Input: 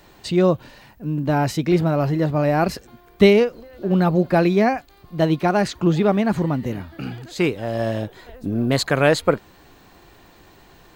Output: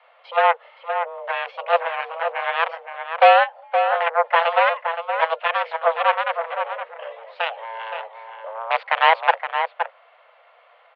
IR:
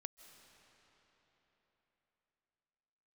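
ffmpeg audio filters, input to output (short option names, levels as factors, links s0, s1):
-filter_complex "[0:a]aeval=exprs='0.708*(cos(1*acos(clip(val(0)/0.708,-1,1)))-cos(1*PI/2))+0.0708*(cos(5*acos(clip(val(0)/0.708,-1,1)))-cos(5*PI/2))+0.224*(cos(7*acos(clip(val(0)/0.708,-1,1)))-cos(7*PI/2))':c=same,asplit=2[s0][s1];[s1]adelay=519,volume=0.447,highshelf=f=4000:g=-11.7[s2];[s0][s2]amix=inputs=2:normalize=0,highpass=f=180:t=q:w=0.5412,highpass=f=180:t=q:w=1.307,lowpass=f=2900:t=q:w=0.5176,lowpass=f=2900:t=q:w=0.7071,lowpass=f=2900:t=q:w=1.932,afreqshift=330"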